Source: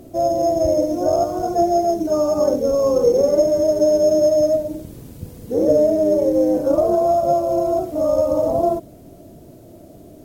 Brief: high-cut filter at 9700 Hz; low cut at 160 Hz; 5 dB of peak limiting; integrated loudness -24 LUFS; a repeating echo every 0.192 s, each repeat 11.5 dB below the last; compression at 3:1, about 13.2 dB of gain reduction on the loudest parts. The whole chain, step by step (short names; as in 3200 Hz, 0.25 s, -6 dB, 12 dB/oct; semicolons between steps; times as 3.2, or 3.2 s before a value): HPF 160 Hz; LPF 9700 Hz; compressor 3:1, threshold -30 dBFS; limiter -23 dBFS; feedback echo 0.192 s, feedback 27%, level -11.5 dB; gain +7 dB